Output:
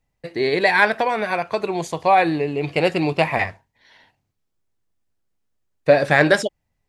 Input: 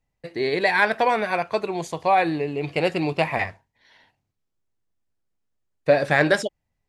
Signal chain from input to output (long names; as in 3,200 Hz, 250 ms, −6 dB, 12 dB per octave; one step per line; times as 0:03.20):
0:00.89–0:01.60: downward compressor 4 to 1, threshold −21 dBFS, peak gain reduction 5 dB
level +3.5 dB